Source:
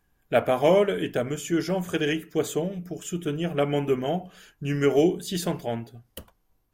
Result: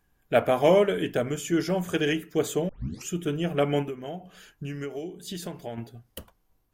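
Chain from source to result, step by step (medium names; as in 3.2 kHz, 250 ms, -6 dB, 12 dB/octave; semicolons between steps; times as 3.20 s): 2.69 s: tape start 0.40 s; 3.82–5.78 s: compression 10:1, threshold -32 dBFS, peak gain reduction 17 dB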